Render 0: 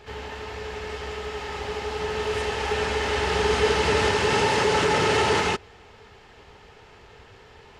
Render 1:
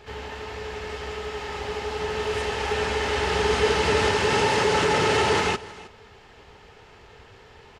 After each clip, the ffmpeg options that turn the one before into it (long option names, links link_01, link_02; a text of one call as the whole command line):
ffmpeg -i in.wav -af "aecho=1:1:314:0.112" out.wav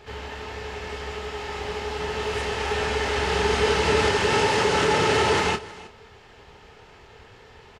ffmpeg -i in.wav -filter_complex "[0:a]asplit=2[link_01][link_02];[link_02]adelay=27,volume=-9dB[link_03];[link_01][link_03]amix=inputs=2:normalize=0" out.wav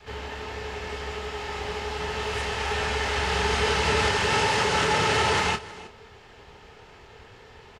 ffmpeg -i in.wav -af "adynamicequalizer=threshold=0.0141:dfrequency=340:dqfactor=1.1:tfrequency=340:tqfactor=1.1:attack=5:release=100:ratio=0.375:range=3.5:mode=cutabove:tftype=bell" out.wav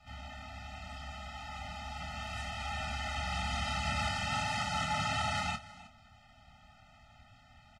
ffmpeg -i in.wav -af "afftfilt=real='re*eq(mod(floor(b*sr/1024/300),2),0)':imag='im*eq(mod(floor(b*sr/1024/300),2),0)':win_size=1024:overlap=0.75,volume=-7.5dB" out.wav